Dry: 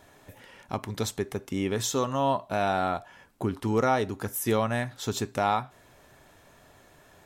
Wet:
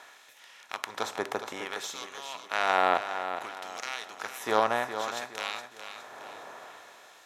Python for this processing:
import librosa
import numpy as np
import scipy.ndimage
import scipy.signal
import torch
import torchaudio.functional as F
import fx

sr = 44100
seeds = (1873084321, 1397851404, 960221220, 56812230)

p1 = fx.bin_compress(x, sr, power=0.6)
p2 = fx.cheby_harmonics(p1, sr, harmonics=(3,), levels_db=(-13,), full_scale_db=-7.0)
p3 = fx.filter_lfo_highpass(p2, sr, shape='sine', hz=0.59, low_hz=700.0, high_hz=3200.0, q=0.78)
p4 = fx.riaa(p3, sr, side='playback')
p5 = p4 + fx.echo_feedback(p4, sr, ms=415, feedback_pct=39, wet_db=-9.5, dry=0)
y = p5 * 10.0 ** (8.5 / 20.0)